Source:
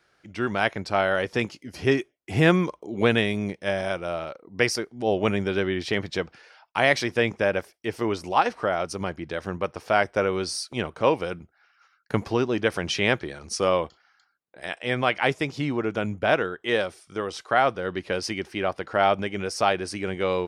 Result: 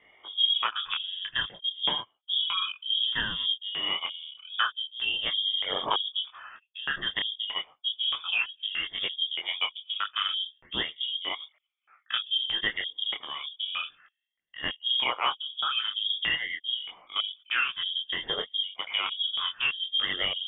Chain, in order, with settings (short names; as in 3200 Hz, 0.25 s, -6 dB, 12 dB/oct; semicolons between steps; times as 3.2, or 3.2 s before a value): moving spectral ripple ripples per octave 0.86, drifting -0.54 Hz, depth 19 dB; compressor 6:1, threshold -26 dBFS, peak gain reduction 15.5 dB; LFO low-pass square 1.6 Hz 270–2600 Hz; inverted band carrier 3500 Hz; detuned doubles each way 12 cents; gain +3 dB